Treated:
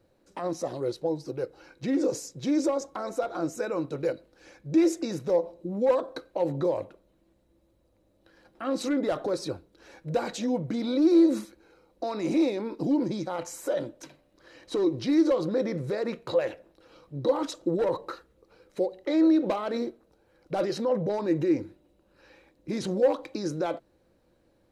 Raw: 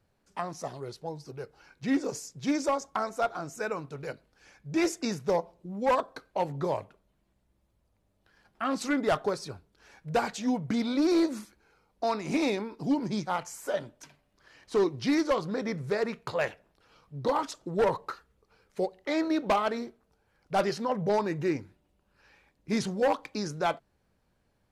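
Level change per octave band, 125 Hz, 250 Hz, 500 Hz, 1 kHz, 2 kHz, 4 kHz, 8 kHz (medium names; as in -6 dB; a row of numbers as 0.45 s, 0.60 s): +1.5 dB, +4.0 dB, +3.0 dB, -5.0 dB, -5.5 dB, -1.5 dB, -0.5 dB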